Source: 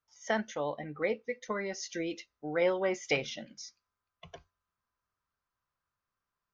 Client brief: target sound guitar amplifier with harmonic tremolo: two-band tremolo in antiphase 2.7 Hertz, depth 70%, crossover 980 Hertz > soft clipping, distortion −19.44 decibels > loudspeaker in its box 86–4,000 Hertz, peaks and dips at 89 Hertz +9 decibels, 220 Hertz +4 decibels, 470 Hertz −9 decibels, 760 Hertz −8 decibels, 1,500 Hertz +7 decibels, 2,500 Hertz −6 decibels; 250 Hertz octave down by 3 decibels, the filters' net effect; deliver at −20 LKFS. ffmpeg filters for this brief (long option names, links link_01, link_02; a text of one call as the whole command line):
ffmpeg -i in.wav -filter_complex "[0:a]equalizer=frequency=250:width_type=o:gain=-5.5,acrossover=split=980[link_01][link_02];[link_01]aeval=exprs='val(0)*(1-0.7/2+0.7/2*cos(2*PI*2.7*n/s))':channel_layout=same[link_03];[link_02]aeval=exprs='val(0)*(1-0.7/2-0.7/2*cos(2*PI*2.7*n/s))':channel_layout=same[link_04];[link_03][link_04]amix=inputs=2:normalize=0,asoftclip=threshold=-24dB,highpass=86,equalizer=frequency=89:width_type=q:width=4:gain=9,equalizer=frequency=220:width_type=q:width=4:gain=4,equalizer=frequency=470:width_type=q:width=4:gain=-9,equalizer=frequency=760:width_type=q:width=4:gain=-8,equalizer=frequency=1500:width_type=q:width=4:gain=7,equalizer=frequency=2500:width_type=q:width=4:gain=-6,lowpass=frequency=4000:width=0.5412,lowpass=frequency=4000:width=1.3066,volume=21.5dB" out.wav